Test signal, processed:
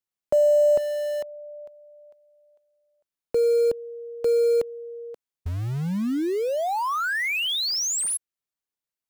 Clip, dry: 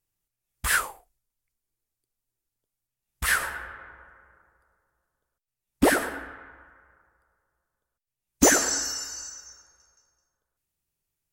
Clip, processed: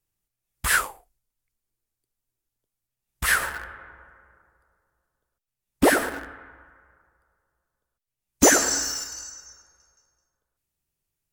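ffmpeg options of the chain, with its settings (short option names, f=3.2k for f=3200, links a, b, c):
-filter_complex "[0:a]lowshelf=f=480:g=2,acrossover=split=250|3000[a][b][c];[a]acompressor=threshold=-29dB:ratio=8[d];[d][b][c]amix=inputs=3:normalize=0,asplit=2[e][f];[f]acrusher=bits=4:mix=0:aa=0.000001,volume=-11dB[g];[e][g]amix=inputs=2:normalize=0"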